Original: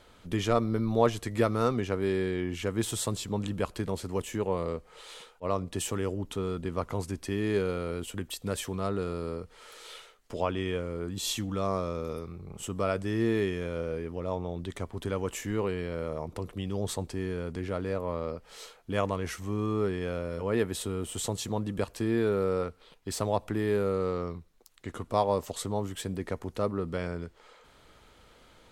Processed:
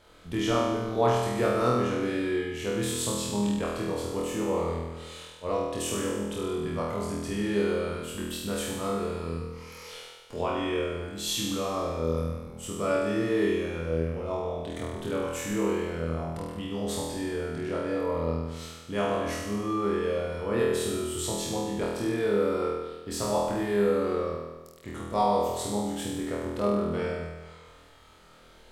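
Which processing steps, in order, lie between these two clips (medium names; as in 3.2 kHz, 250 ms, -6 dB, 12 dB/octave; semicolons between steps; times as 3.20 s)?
9.40–9.88 s: rippled EQ curve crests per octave 0.82, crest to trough 11 dB; flutter echo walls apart 4.2 m, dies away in 1.2 s; trim -3 dB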